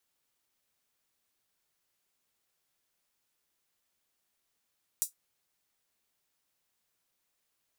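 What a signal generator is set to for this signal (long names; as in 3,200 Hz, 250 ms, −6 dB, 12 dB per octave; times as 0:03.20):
closed synth hi-hat, high-pass 7,400 Hz, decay 0.13 s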